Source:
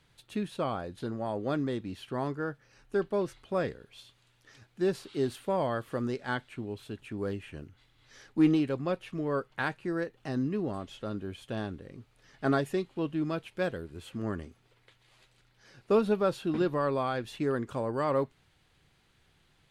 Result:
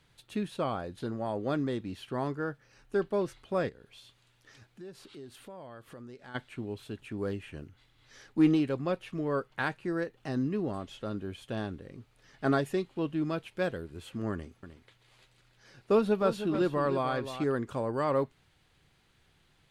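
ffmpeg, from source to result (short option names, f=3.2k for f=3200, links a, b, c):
-filter_complex "[0:a]asplit=3[a][b][c];[a]afade=t=out:st=3.68:d=0.02[d];[b]acompressor=threshold=-49dB:ratio=3:attack=3.2:release=140:knee=1:detection=peak,afade=t=in:st=3.68:d=0.02,afade=t=out:st=6.34:d=0.02[e];[c]afade=t=in:st=6.34:d=0.02[f];[d][e][f]amix=inputs=3:normalize=0,asettb=1/sr,asplit=3[g][h][i];[g]atrim=end=14.324[j];[h]atrim=start=14.32:end=17.44,asetpts=PTS-STARTPTS,afade=t=in:d=0.004:c=qsin,afade=t=out:st=3.116:d=0.004:c=qsin,aecho=1:1:307:0.299,atrim=end_sample=137592[k];[i]atrim=start=17.436[l];[j][k]acrossfade=d=0.004:c1=hsin:c2=qsin[m];[m][l]acrossfade=d=0.004:c1=qsin:c2=hsin"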